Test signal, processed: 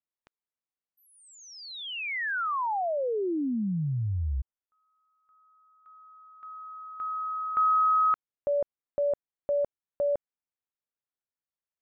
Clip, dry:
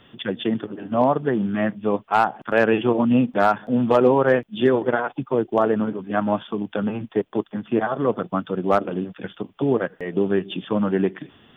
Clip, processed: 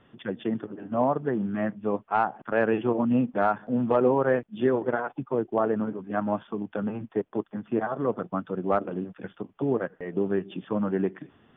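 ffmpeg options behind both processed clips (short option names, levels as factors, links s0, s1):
-af "lowpass=2000,volume=0.531"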